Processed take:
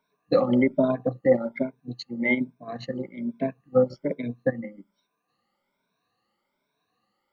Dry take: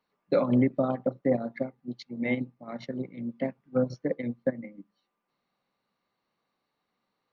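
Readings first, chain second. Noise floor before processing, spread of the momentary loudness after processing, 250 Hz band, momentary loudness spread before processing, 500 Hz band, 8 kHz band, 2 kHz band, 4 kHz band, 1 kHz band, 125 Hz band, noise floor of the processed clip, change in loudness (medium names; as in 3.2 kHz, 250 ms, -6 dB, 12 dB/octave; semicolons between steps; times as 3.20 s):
-82 dBFS, 13 LU, +2.5 dB, 14 LU, +5.0 dB, no reading, +8.5 dB, +6.5 dB, +3.0 dB, 0.0 dB, -78 dBFS, +4.0 dB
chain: drifting ripple filter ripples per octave 1.6, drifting +1.2 Hz, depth 20 dB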